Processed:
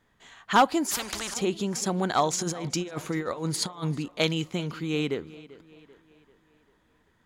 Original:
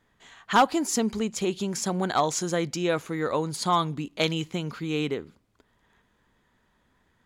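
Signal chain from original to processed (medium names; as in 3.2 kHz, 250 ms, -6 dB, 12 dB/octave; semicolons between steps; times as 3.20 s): 2.33–3.98 s: compressor with a negative ratio -30 dBFS, ratio -0.5; tape echo 390 ms, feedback 51%, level -18 dB, low-pass 5.1 kHz; 0.91–1.34 s: spectrum-flattening compressor 4:1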